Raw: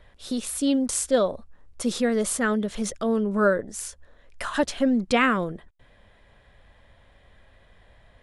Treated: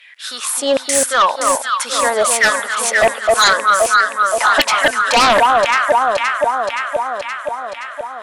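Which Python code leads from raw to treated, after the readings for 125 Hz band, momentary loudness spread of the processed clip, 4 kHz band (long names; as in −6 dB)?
can't be measured, 12 LU, +17.5 dB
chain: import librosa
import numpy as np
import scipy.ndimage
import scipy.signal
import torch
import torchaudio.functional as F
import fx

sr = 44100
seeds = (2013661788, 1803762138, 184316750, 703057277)

y = fx.filter_lfo_highpass(x, sr, shape='saw_down', hz=1.3, low_hz=600.0, high_hz=2600.0, q=6.7)
y = fx.echo_alternate(y, sr, ms=261, hz=1200.0, feedback_pct=80, wet_db=-3.5)
y = fx.fold_sine(y, sr, drive_db=14, ceiling_db=-1.0)
y = F.gain(torch.from_numpy(y), -6.0).numpy()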